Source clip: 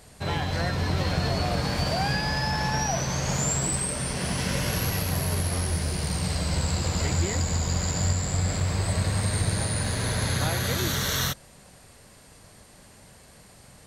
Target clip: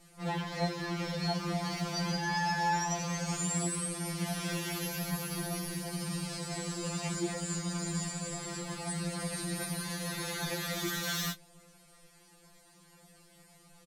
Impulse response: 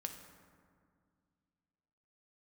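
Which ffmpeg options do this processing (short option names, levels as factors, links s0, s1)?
-filter_complex "[0:a]asplit=2[s0][s1];[s1]adelay=20,volume=0.282[s2];[s0][s2]amix=inputs=2:normalize=0,flanger=delay=5:depth=3.6:regen=-37:speed=0.53:shape=triangular,asplit=2[s3][s4];[s4]asetrate=55563,aresample=44100,atempo=0.793701,volume=0.447[s5];[s3][s5]amix=inputs=2:normalize=0,afftfilt=real='re*2.83*eq(mod(b,8),0)':imag='im*2.83*eq(mod(b,8),0)':win_size=2048:overlap=0.75,volume=0.75"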